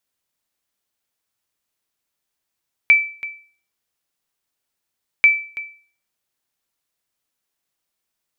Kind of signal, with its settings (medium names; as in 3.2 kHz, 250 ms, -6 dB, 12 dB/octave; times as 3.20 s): sonar ping 2.32 kHz, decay 0.43 s, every 2.34 s, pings 2, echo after 0.33 s, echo -17 dB -4.5 dBFS